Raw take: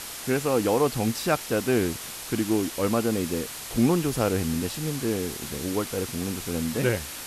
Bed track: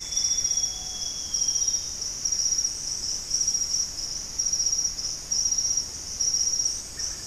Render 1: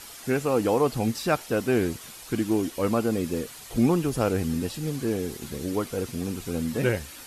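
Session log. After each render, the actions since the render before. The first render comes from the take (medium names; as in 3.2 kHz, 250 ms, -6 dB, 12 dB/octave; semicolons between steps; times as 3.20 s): noise reduction 9 dB, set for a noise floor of -38 dBFS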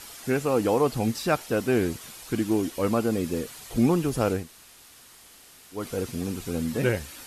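4.40–5.79 s: room tone, crossfade 0.16 s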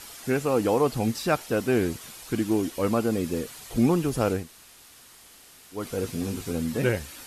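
6.01–6.52 s: doubling 19 ms -6 dB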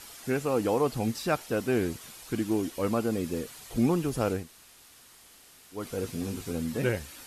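trim -3.5 dB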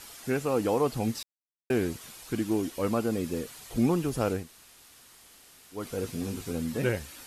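1.23–1.70 s: mute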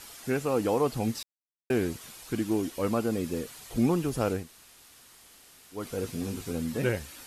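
no audible change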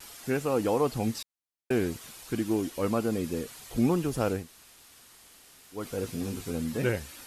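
vibrato 0.55 Hz 18 cents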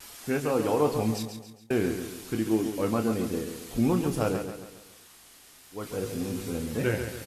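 doubling 27 ms -8 dB; feedback delay 138 ms, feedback 45%, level -8 dB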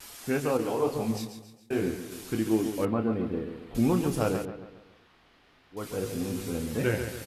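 0.57–2.12 s: detune thickener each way 58 cents; 2.85–3.75 s: distance through air 450 m; 4.45–5.77 s: distance through air 330 m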